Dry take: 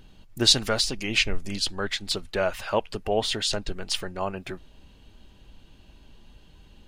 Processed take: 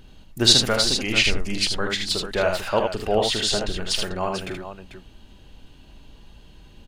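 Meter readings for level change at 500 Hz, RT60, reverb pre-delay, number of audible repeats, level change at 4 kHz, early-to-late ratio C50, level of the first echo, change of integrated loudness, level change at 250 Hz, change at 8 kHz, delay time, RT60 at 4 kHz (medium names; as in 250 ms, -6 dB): +4.5 dB, no reverb, no reverb, 3, +4.5 dB, no reverb, -9.5 dB, +4.5 dB, +4.5 dB, +4.5 dB, 44 ms, no reverb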